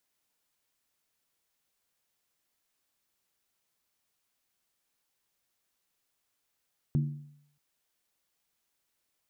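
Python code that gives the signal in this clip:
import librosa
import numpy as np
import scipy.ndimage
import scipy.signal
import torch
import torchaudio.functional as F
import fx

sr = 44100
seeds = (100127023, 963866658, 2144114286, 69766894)

y = fx.strike_skin(sr, length_s=0.63, level_db=-21.5, hz=146.0, decay_s=0.7, tilt_db=8.5, modes=5)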